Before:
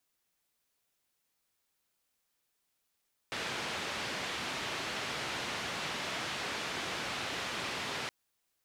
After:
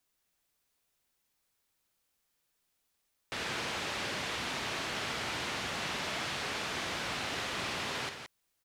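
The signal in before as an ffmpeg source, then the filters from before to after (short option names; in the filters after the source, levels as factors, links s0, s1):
-f lavfi -i "anoisesrc=c=white:d=4.77:r=44100:seed=1,highpass=f=89,lowpass=f=3300,volume=-24.7dB"
-filter_complex "[0:a]lowshelf=f=90:g=6,asplit=2[s0][s1];[s1]aecho=0:1:55.39|172:0.282|0.398[s2];[s0][s2]amix=inputs=2:normalize=0"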